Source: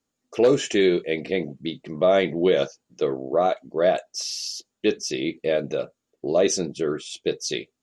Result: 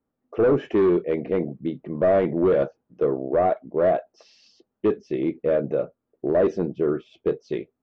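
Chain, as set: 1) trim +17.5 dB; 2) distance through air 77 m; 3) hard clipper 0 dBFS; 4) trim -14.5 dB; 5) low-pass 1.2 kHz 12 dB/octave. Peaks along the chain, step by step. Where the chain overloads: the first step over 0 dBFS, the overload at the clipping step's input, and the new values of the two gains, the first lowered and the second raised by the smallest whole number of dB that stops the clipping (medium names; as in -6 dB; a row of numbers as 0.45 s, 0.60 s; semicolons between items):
+9.0 dBFS, +8.5 dBFS, 0.0 dBFS, -14.5 dBFS, -14.0 dBFS; step 1, 8.5 dB; step 1 +8.5 dB, step 4 -5.5 dB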